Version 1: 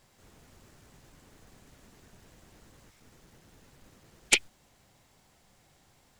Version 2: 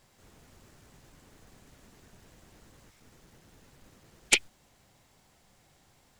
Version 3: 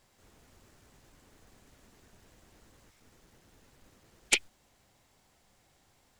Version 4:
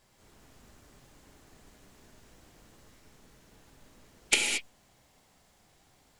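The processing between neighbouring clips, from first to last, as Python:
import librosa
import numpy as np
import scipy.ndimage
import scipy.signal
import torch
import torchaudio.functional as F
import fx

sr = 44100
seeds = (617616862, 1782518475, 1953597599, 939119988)

y1 = x
y2 = fx.peak_eq(y1, sr, hz=150.0, db=-4.0, octaves=0.76)
y2 = F.gain(torch.from_numpy(y2), -3.0).numpy()
y3 = fx.rev_gated(y2, sr, seeds[0], gate_ms=250, shape='flat', drr_db=0.0)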